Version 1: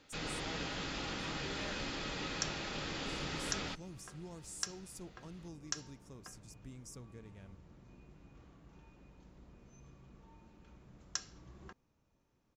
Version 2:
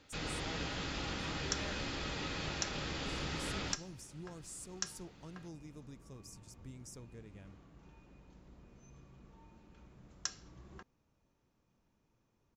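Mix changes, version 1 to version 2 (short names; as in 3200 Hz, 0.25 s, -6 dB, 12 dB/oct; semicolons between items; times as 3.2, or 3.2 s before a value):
first sound: add bell 78 Hz +7 dB 1 oct; second sound: entry -0.90 s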